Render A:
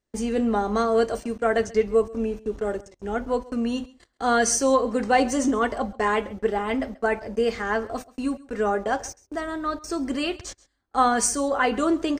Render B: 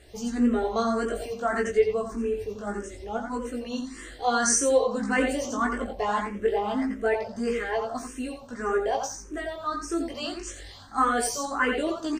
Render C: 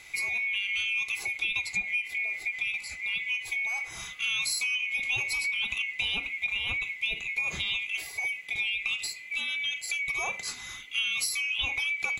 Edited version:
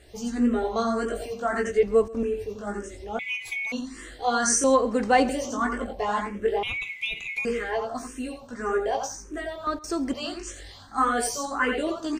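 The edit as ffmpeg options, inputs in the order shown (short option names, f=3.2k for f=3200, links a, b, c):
-filter_complex "[0:a]asplit=3[a][b][c];[2:a]asplit=2[d][e];[1:a]asplit=6[f][g][h][i][j][k];[f]atrim=end=1.832[l];[a]atrim=start=1.828:end=2.232[m];[g]atrim=start=2.228:end=3.192[n];[d]atrim=start=3.188:end=3.722[o];[h]atrim=start=3.718:end=4.642[p];[b]atrim=start=4.638:end=5.292[q];[i]atrim=start=5.288:end=6.632[r];[e]atrim=start=6.628:end=7.452[s];[j]atrim=start=7.448:end=9.672[t];[c]atrim=start=9.668:end=10.132[u];[k]atrim=start=10.128[v];[l][m]acrossfade=d=0.004:c1=hsin:c2=hsin[w];[w][n]acrossfade=d=0.004:c1=hsin:c2=hsin[x];[x][o]acrossfade=d=0.004:c1=hsin:c2=hsin[y];[y][p]acrossfade=d=0.004:c1=hsin:c2=hsin[z];[z][q]acrossfade=d=0.004:c1=hsin:c2=hsin[aa];[aa][r]acrossfade=d=0.004:c1=hsin:c2=hsin[ab];[ab][s]acrossfade=d=0.004:c1=hsin:c2=hsin[ac];[ac][t]acrossfade=d=0.004:c1=hsin:c2=hsin[ad];[ad][u]acrossfade=d=0.004:c1=hsin:c2=hsin[ae];[ae][v]acrossfade=d=0.004:c1=hsin:c2=hsin"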